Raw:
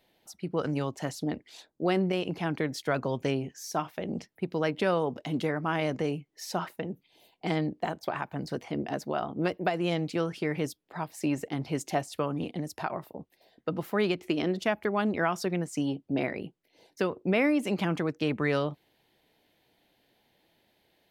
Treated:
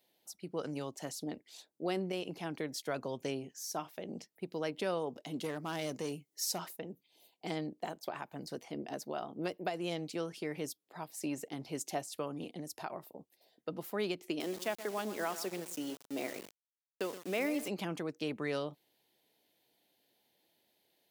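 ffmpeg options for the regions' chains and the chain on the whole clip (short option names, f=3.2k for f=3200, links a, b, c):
-filter_complex "[0:a]asettb=1/sr,asplit=3[a][b][c];[a]atrim=end=5.444[d];[b]atrim=start=5.44:end=6.77,asetpts=PTS-STARTPTS,afade=t=in:d=0.004:c=qsin,afade=t=out:st=1.326:d=0.004:c=qsin,bass=f=250:g=2,treble=f=4k:g=8,asoftclip=type=hard:threshold=-22.5dB[e];[c]atrim=start=6.766[f];[d][e]acrossfade=d=0.004:c1=hsin:c2=qsin[g];[g][f]acrossfade=d=0.004:c1=qsin:c2=hsin,asettb=1/sr,asplit=3[h][i][j];[h]atrim=end=14.404[k];[i]atrim=start=14.4:end=17.68,asetpts=PTS-STARTPTS,afade=t=in:d=0.004:c=qsin,afade=t=out:st=3.276:d=0.004:c=qsin,highpass=230,asplit=2[l][m];[m]adelay=125,lowpass=f=3k:p=1,volume=-12dB,asplit=2[n][o];[o]adelay=125,lowpass=f=3k:p=1,volume=0.34,asplit=2[p][q];[q]adelay=125,lowpass=f=3k:p=1,volume=0.34[r];[l][n][p][r]amix=inputs=4:normalize=0,atrim=end_sample=144648,aeval=exprs='val(0)*gte(abs(val(0)),0.0133)':c=same[s];[j]atrim=start=17.676[t];[k][s]acrossfade=d=0.004:c1=hsin:c2=qsin[u];[u][t]acrossfade=d=0.004:c1=qsin:c2=hsin,highpass=f=740:p=1,equalizer=f=1.6k:t=o:w=2.8:g=-11.5,volume=2dB"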